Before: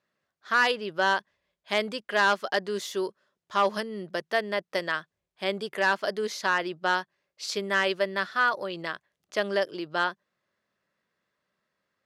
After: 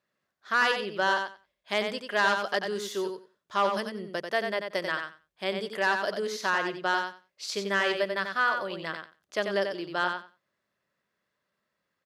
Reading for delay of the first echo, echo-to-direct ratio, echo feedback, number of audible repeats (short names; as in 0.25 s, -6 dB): 91 ms, -6.0 dB, 16%, 2